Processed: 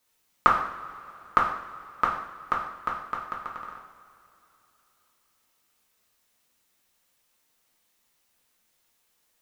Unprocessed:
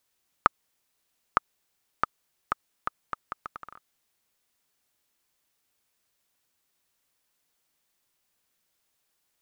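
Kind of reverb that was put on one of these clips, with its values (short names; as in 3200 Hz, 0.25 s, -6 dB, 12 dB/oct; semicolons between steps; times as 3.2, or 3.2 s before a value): two-slope reverb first 0.64 s, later 3.4 s, from -18 dB, DRR -4 dB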